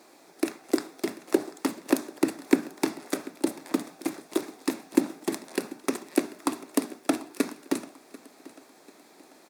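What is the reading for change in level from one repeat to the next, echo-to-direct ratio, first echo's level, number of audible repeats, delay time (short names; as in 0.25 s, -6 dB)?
-7.5 dB, -19.0 dB, -20.0 dB, 2, 0.741 s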